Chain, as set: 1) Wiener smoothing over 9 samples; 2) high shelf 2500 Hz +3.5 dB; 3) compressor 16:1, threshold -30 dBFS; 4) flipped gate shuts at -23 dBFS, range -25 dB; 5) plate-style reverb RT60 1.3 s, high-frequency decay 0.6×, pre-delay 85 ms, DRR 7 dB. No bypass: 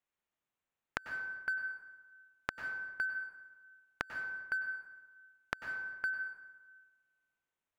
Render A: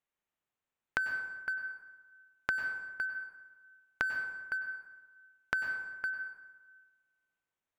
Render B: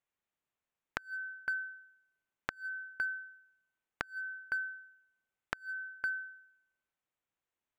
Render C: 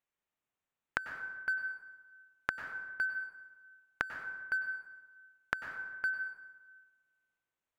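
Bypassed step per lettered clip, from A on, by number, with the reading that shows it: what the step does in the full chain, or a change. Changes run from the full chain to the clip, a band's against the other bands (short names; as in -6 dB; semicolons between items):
4, crest factor change -2.5 dB; 5, momentary loudness spread change -6 LU; 3, mean gain reduction 3.5 dB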